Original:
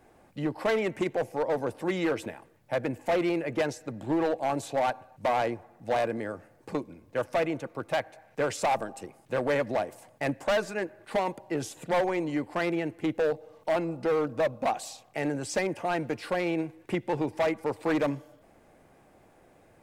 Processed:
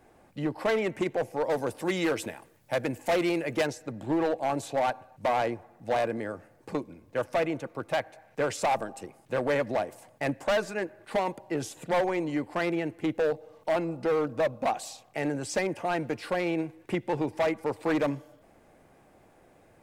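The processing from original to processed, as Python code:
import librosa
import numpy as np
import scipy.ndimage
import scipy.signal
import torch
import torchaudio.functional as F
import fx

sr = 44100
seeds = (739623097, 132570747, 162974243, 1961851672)

y = fx.high_shelf(x, sr, hz=3500.0, db=9.0, at=(1.43, 3.67))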